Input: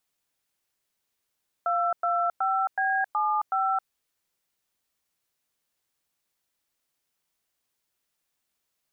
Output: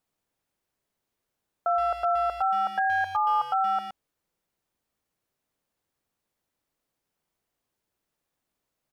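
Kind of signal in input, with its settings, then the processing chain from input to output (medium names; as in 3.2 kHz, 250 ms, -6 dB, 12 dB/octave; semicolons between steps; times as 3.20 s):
DTMF "225B75", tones 268 ms, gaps 104 ms, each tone -25 dBFS
tilt shelf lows +6 dB, about 1.2 kHz; speakerphone echo 120 ms, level -8 dB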